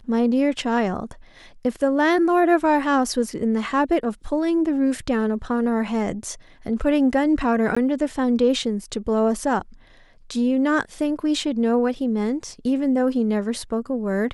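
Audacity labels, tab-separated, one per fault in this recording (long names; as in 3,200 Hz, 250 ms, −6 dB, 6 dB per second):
7.750000	7.760000	drop-out 15 ms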